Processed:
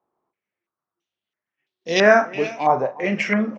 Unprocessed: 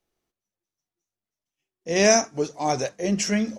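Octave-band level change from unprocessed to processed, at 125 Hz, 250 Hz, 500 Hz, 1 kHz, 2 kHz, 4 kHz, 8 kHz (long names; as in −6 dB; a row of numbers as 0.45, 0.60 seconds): 0.0, +1.0, +4.0, +7.0, +8.5, −1.0, −14.5 decibels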